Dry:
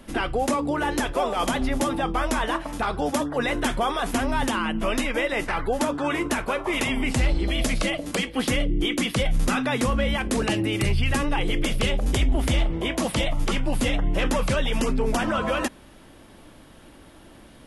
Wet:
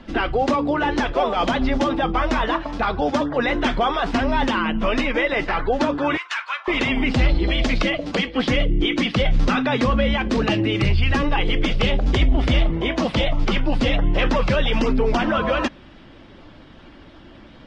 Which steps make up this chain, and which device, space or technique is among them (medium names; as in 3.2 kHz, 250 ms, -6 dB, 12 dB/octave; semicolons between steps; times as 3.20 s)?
clip after many re-uploads (low-pass 4.9 kHz 24 dB/octave; coarse spectral quantiser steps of 15 dB); 6.17–6.68 s: inverse Chebyshev high-pass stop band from 190 Hz, stop band 80 dB; trim +4.5 dB